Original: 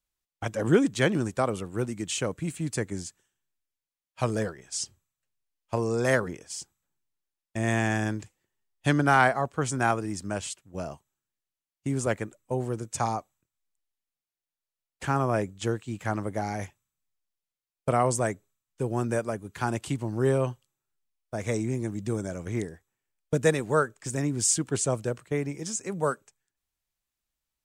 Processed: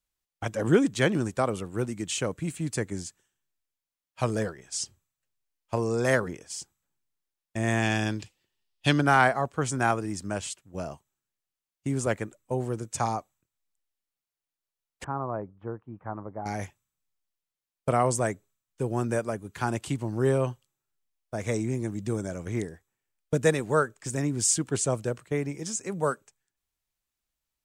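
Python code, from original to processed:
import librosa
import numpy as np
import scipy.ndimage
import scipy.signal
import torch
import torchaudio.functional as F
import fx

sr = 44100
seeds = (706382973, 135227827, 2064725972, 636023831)

y = fx.band_shelf(x, sr, hz=3600.0, db=8.5, octaves=1.3, at=(7.82, 9.01))
y = fx.ladder_lowpass(y, sr, hz=1300.0, resonance_pct=40, at=(15.04, 16.46))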